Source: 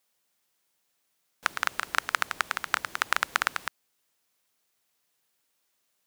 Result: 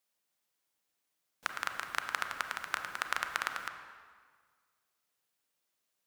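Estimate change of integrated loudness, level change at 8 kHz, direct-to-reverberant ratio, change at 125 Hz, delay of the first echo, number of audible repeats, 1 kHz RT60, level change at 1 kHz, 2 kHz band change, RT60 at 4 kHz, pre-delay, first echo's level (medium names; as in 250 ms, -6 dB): -7.5 dB, -8.0 dB, 6.0 dB, -6.5 dB, no echo, no echo, 1.7 s, -7.0 dB, -7.0 dB, 1.4 s, 30 ms, no echo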